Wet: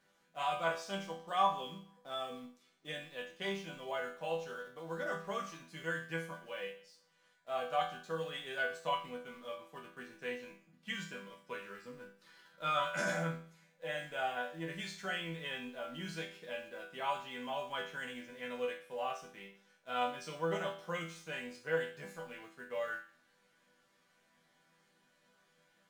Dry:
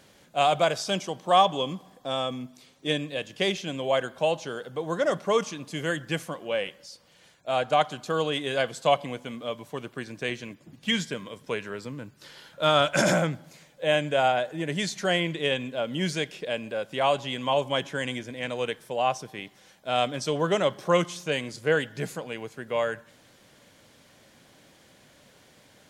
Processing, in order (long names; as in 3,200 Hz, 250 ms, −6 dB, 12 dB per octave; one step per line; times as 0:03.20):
parametric band 1,400 Hz +8 dB 1.3 octaves
in parallel at −10.5 dB: bit reduction 6 bits
on the sum: resonators tuned to a chord E3 minor, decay 0.45 s